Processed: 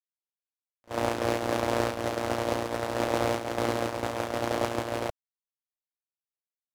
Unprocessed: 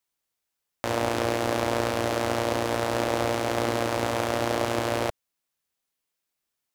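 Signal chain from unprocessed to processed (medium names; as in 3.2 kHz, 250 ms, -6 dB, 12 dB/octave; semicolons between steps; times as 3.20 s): gate -24 dBFS, range -40 dB; trim +1.5 dB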